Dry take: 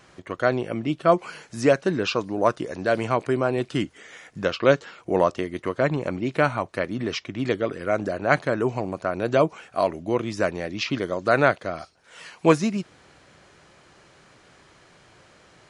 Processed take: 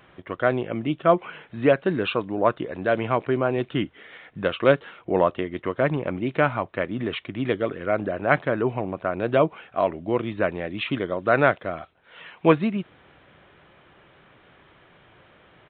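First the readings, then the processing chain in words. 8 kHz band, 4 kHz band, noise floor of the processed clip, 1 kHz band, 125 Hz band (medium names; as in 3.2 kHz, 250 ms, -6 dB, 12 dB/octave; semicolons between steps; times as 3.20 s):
under -35 dB, -2.0 dB, -56 dBFS, 0.0 dB, 0.0 dB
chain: resampled via 8 kHz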